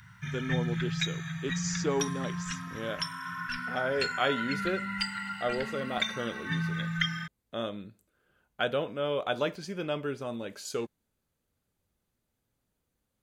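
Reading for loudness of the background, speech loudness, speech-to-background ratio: -33.5 LUFS, -34.5 LUFS, -1.0 dB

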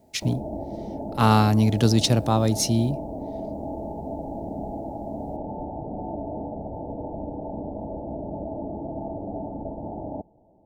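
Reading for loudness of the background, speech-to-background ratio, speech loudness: -34.0 LUFS, 12.5 dB, -21.5 LUFS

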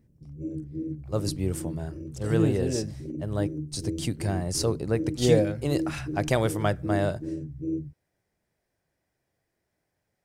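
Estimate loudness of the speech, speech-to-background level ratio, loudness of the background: -28.0 LUFS, 7.0 dB, -35.0 LUFS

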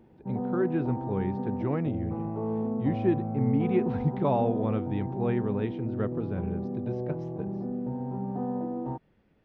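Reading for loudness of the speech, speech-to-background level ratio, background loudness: -31.0 LUFS, 2.0 dB, -33.0 LUFS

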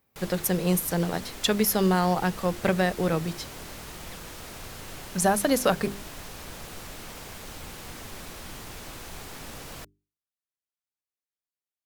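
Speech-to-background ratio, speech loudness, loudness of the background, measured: 15.0 dB, -25.5 LUFS, -40.5 LUFS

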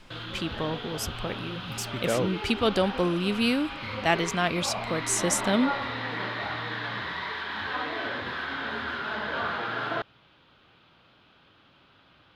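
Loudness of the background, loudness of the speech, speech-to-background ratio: -33.0 LUFS, -28.0 LUFS, 5.0 dB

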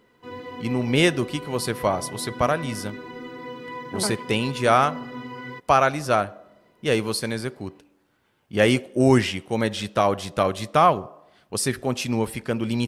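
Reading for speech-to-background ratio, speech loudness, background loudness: 13.5 dB, -23.0 LUFS, -36.5 LUFS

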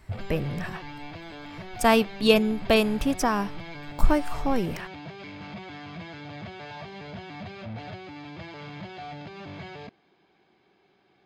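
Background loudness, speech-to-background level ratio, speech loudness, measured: -40.0 LUFS, 15.0 dB, -25.0 LUFS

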